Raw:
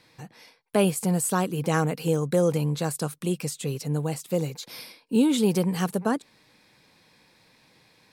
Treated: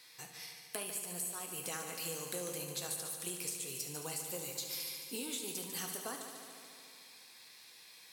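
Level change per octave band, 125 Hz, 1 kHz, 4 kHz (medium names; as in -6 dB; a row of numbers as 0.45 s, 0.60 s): -25.0 dB, -16.5 dB, -5.5 dB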